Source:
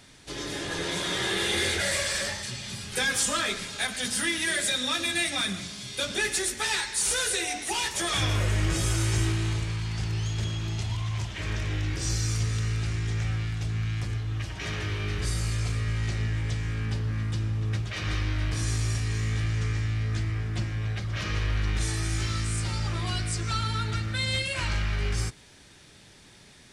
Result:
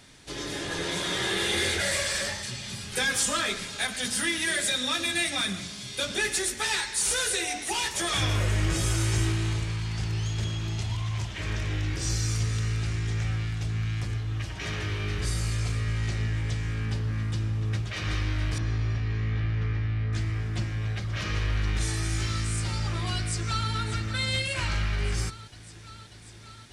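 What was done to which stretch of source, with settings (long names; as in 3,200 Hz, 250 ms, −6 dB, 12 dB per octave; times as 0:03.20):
0:18.58–0:20.13: high-frequency loss of the air 280 metres
0:23.16–0:23.70: delay throw 590 ms, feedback 80%, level −12 dB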